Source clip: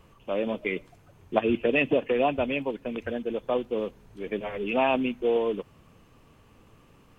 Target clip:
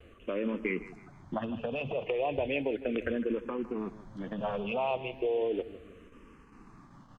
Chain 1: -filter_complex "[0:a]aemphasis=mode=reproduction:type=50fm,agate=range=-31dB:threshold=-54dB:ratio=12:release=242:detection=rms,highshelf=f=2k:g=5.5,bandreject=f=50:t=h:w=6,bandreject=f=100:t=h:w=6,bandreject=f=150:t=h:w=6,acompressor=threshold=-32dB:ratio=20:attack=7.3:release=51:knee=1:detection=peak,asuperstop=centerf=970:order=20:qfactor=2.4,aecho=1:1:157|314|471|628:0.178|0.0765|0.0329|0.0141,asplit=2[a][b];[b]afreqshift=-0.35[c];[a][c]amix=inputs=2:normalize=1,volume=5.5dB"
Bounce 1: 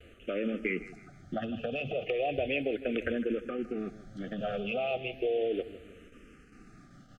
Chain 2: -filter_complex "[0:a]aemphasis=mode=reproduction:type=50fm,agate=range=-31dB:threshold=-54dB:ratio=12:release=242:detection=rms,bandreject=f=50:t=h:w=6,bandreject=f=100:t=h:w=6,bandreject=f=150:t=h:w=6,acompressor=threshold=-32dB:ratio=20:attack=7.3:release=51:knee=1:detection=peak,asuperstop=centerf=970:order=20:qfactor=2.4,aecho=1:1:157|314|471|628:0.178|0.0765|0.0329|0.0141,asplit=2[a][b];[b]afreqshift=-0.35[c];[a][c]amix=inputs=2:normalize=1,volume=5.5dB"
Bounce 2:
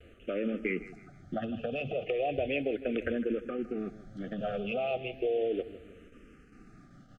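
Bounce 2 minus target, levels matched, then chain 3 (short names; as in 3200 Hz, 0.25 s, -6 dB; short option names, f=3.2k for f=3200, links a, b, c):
1000 Hz band -2.5 dB
-filter_complex "[0:a]aemphasis=mode=reproduction:type=50fm,agate=range=-31dB:threshold=-54dB:ratio=12:release=242:detection=rms,bandreject=f=50:t=h:w=6,bandreject=f=100:t=h:w=6,bandreject=f=150:t=h:w=6,acompressor=threshold=-32dB:ratio=20:attack=7.3:release=51:knee=1:detection=peak,aecho=1:1:157|314|471|628:0.178|0.0765|0.0329|0.0141,asplit=2[a][b];[b]afreqshift=-0.35[c];[a][c]amix=inputs=2:normalize=1,volume=5.5dB"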